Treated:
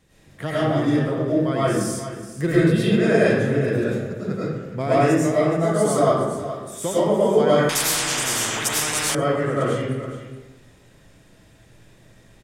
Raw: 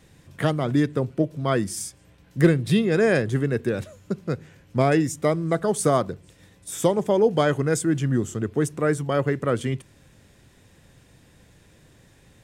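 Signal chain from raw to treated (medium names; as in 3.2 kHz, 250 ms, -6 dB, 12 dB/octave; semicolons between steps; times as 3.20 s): delay 421 ms -13 dB; algorithmic reverb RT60 1.1 s, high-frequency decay 0.6×, pre-delay 65 ms, DRR -9.5 dB; 7.69–9.15 s: spectrum-flattening compressor 10:1; trim -7 dB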